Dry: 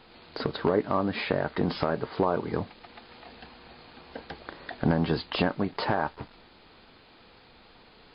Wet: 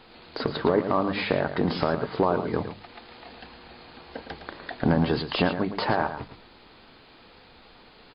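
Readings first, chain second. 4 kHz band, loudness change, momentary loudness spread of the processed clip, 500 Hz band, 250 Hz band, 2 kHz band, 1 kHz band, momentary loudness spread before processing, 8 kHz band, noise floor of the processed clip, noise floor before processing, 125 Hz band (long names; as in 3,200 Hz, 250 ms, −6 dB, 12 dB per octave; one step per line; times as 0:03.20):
+3.0 dB, +2.5 dB, 21 LU, +2.5 dB, +2.5 dB, +3.0 dB, +3.0 dB, 21 LU, can't be measured, −53 dBFS, −55 dBFS, +2.0 dB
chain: mains-hum notches 50/100/150/200 Hz
on a send: single-tap delay 111 ms −10 dB
on the sum: level +2.5 dB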